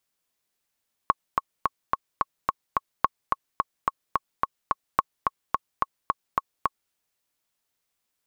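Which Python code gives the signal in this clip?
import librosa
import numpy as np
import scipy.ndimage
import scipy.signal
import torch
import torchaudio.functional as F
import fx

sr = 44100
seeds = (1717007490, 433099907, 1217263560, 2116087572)

y = fx.click_track(sr, bpm=216, beats=7, bars=3, hz=1100.0, accent_db=3.5, level_db=-5.0)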